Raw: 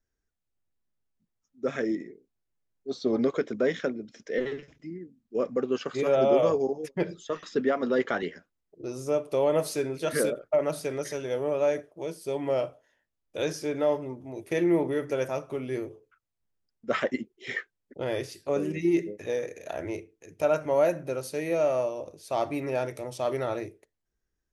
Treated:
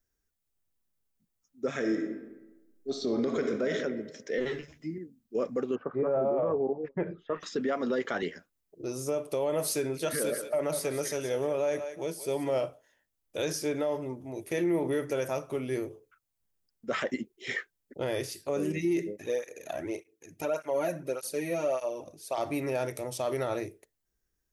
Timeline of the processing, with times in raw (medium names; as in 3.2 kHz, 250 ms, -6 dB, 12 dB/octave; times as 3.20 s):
1.73–3.73 s: reverb throw, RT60 1.1 s, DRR 5 dB
4.45–4.98 s: doubling 13 ms -2.5 dB
5.74–7.40 s: low-pass 1.2 kHz -> 2.3 kHz 24 dB/octave
9.97–12.61 s: thinning echo 182 ms, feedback 18%, high-pass 500 Hz, level -11 dB
19.16–22.38 s: cancelling through-zero flanger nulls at 1.7 Hz, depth 2.5 ms
whole clip: treble shelf 7.4 kHz +11 dB; peak limiter -21 dBFS